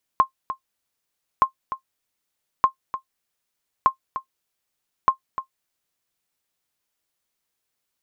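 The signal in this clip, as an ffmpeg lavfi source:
-f lavfi -i "aevalsrc='0.501*(sin(2*PI*1060*mod(t,1.22))*exp(-6.91*mod(t,1.22)/0.1)+0.251*sin(2*PI*1060*max(mod(t,1.22)-0.3,0))*exp(-6.91*max(mod(t,1.22)-0.3,0)/0.1))':d=6.1:s=44100"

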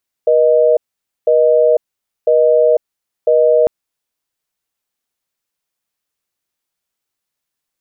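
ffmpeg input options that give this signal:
-f lavfi -i "aevalsrc='0.299*(sin(2*PI*480*t)+sin(2*PI*620*t))*clip(min(mod(t,1),0.5-mod(t,1))/0.005,0,1)':d=3.4:s=44100"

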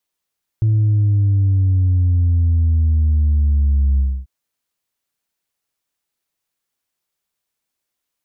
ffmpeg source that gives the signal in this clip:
-f lavfi -i "aevalsrc='0.251*clip((3.64-t)/0.27,0,1)*tanh(1.12*sin(2*PI*110*3.64/log(65/110)*(exp(log(65/110)*t/3.64)-1)))/tanh(1.12)':d=3.64:s=44100"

